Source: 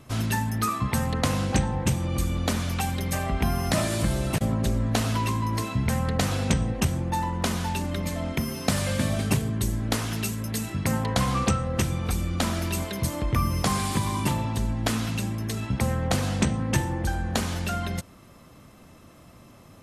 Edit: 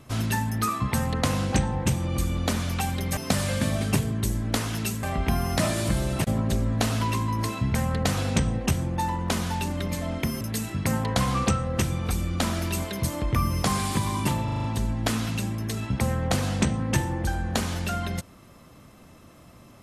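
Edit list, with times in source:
8.55–10.41 move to 3.17
14.44 stutter 0.04 s, 6 plays

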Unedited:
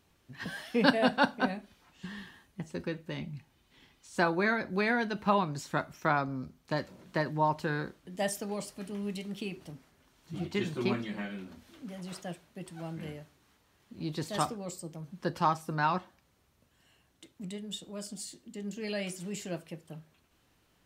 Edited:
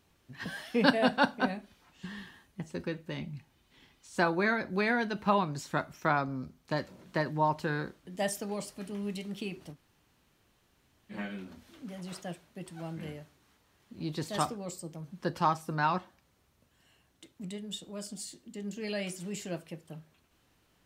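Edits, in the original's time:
9.74–11.12 room tone, crossfade 0.06 s

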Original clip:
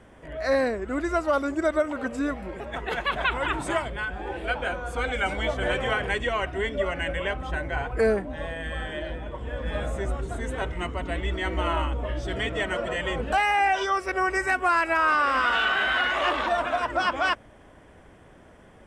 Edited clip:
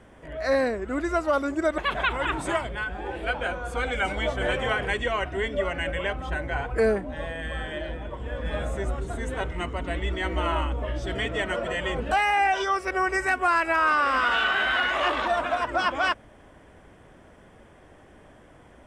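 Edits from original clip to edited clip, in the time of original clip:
1.78–2.99 cut

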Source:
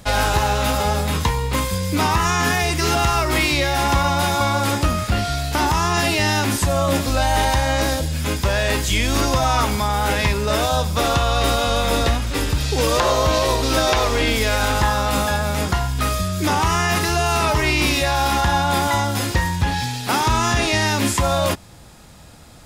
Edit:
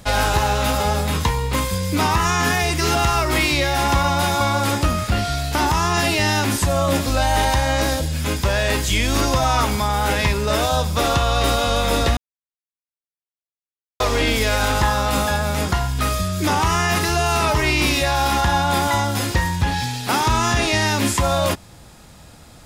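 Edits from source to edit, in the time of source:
12.17–14 mute

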